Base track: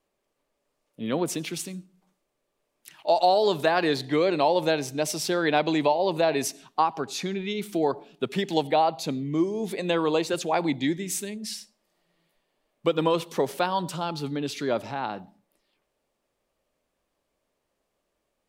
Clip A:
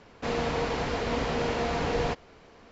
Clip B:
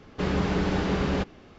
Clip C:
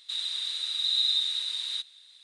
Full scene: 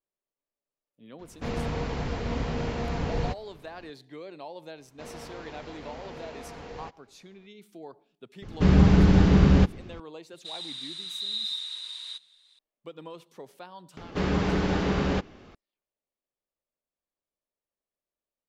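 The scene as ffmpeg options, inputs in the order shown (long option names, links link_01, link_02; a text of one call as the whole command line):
ffmpeg -i bed.wav -i cue0.wav -i cue1.wav -i cue2.wav -filter_complex "[1:a]asplit=2[link_01][link_02];[2:a]asplit=2[link_03][link_04];[0:a]volume=-19.5dB[link_05];[link_01]bass=frequency=250:gain=10,treble=frequency=4000:gain=0[link_06];[link_03]bass=frequency=250:gain=12,treble=frequency=4000:gain=2[link_07];[3:a]equalizer=frequency=970:width=1.9:gain=5[link_08];[link_04]acompressor=mode=upward:threshold=-36dB:ratio=2.5:attack=16:release=866:knee=2.83:detection=peak[link_09];[link_06]atrim=end=2.71,asetpts=PTS-STARTPTS,volume=-5.5dB,afade=type=in:duration=0.004:curve=hsin,afade=type=out:start_time=2.706:duration=0.004:curve=hsin,adelay=1190[link_10];[link_02]atrim=end=2.71,asetpts=PTS-STARTPTS,volume=-14dB,afade=type=in:duration=0.004:curve=hsin,afade=type=out:start_time=2.706:duration=0.004:curve=hsin,adelay=4760[link_11];[link_07]atrim=end=1.58,asetpts=PTS-STARTPTS,afade=type=in:duration=0.004:curve=hsin,afade=type=out:start_time=1.576:duration=0.004:curve=hsin,adelay=371322S[link_12];[link_08]atrim=end=2.23,asetpts=PTS-STARTPTS,volume=-6.5dB,afade=type=in:duration=0.004:curve=hsin,afade=type=out:start_time=2.226:duration=0.004:curve=hsin,adelay=10360[link_13];[link_09]atrim=end=1.58,asetpts=PTS-STARTPTS,afade=type=in:duration=0.004:curve=hsin,afade=type=out:start_time=1.576:duration=0.004:curve=hsin,adelay=13970[link_14];[link_05][link_10][link_11][link_12][link_13][link_14]amix=inputs=6:normalize=0" out.wav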